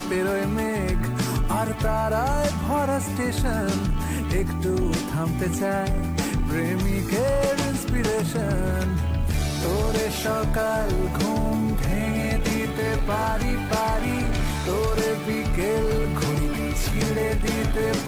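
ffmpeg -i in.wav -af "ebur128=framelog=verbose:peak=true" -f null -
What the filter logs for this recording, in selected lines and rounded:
Integrated loudness:
  I:         -24.6 LUFS
  Threshold: -34.6 LUFS
Loudness range:
  LRA:         0.7 LU
  Threshold: -44.6 LUFS
  LRA low:   -25.0 LUFS
  LRA high:  -24.3 LUFS
True peak:
  Peak:      -15.3 dBFS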